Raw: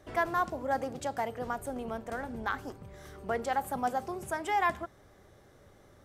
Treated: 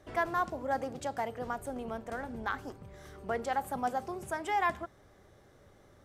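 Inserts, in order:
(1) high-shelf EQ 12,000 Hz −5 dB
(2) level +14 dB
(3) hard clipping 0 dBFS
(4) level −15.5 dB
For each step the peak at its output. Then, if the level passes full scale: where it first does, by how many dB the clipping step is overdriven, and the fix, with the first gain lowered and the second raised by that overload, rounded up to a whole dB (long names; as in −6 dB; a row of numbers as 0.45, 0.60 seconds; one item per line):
−16.5, −2.5, −2.5, −18.0 dBFS
no step passes full scale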